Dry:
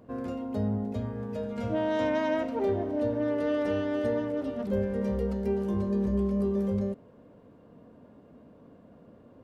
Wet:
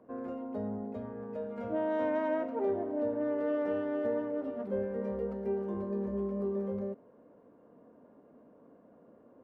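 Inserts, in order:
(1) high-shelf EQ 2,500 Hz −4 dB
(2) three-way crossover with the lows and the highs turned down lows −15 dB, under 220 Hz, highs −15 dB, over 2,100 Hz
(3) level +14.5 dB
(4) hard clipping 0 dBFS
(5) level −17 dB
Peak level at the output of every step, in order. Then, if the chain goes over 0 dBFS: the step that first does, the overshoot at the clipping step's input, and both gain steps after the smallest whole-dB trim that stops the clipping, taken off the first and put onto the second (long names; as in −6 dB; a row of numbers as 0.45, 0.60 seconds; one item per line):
−17.5, −18.5, −4.0, −4.0, −21.0 dBFS
no step passes full scale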